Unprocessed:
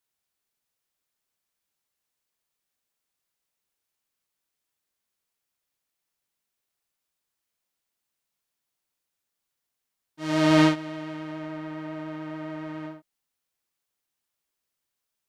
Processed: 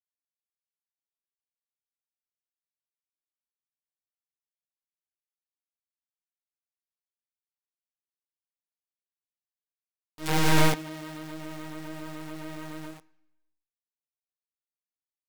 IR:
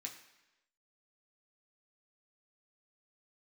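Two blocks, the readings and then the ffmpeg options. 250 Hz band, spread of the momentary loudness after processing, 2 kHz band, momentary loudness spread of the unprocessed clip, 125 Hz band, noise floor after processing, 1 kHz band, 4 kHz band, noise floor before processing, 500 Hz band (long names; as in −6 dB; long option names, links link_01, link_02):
−7.5 dB, 17 LU, 0.0 dB, 17 LU, 0.0 dB, below −85 dBFS, −0.5 dB, 0.0 dB, −84 dBFS, −5.0 dB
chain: -filter_complex "[0:a]acrossover=split=2500[link_01][link_02];[link_02]acompressor=threshold=-40dB:ratio=4:attack=1:release=60[link_03];[link_01][link_03]amix=inputs=2:normalize=0,acrusher=bits=5:dc=4:mix=0:aa=0.000001,aeval=exprs='abs(val(0))':channel_layout=same,asplit=2[link_04][link_05];[1:a]atrim=start_sample=2205[link_06];[link_05][link_06]afir=irnorm=-1:irlink=0,volume=-9dB[link_07];[link_04][link_07]amix=inputs=2:normalize=0"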